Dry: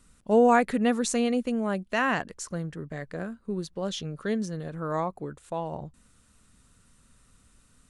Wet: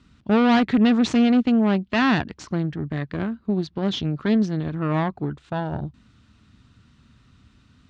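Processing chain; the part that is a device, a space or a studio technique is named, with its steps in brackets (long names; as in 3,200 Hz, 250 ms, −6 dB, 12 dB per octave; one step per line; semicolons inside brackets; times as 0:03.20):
guitar amplifier (tube saturation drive 25 dB, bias 0.8; bass and treble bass +11 dB, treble +13 dB; loudspeaker in its box 95–3,700 Hz, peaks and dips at 170 Hz −6 dB, 310 Hz +3 dB, 510 Hz −7 dB)
level +9 dB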